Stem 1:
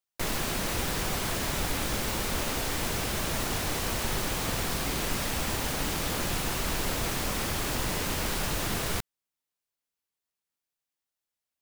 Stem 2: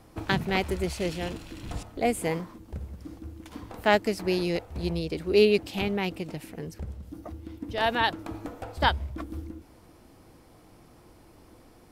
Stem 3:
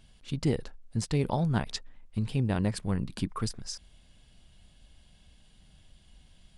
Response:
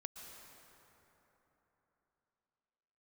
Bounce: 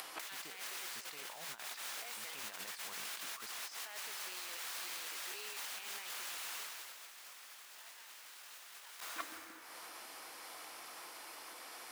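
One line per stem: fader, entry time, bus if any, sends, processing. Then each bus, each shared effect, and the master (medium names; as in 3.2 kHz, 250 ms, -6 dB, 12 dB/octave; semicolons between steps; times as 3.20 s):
+2.5 dB, 0.00 s, bus A, send -13.5 dB, auto duck -11 dB, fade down 0.30 s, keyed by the third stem
-0.5 dB, 0.00 s, bus A, no send, compression 1.5:1, threshold -47 dBFS, peak gain reduction 11.5 dB
+1.5 dB, 0.00 s, no bus, send -4 dB, treble shelf 5 kHz -7.5 dB; square tremolo 7.4 Hz, depth 60%, duty 70%
bus A: 0.0 dB, upward compressor, threshold -42 dBFS; peak limiter -22 dBFS, peak gain reduction 8 dB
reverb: on, RT60 3.7 s, pre-delay 108 ms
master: high-pass 1.2 kHz 12 dB/octave; compressor with a negative ratio -44 dBFS, ratio -0.5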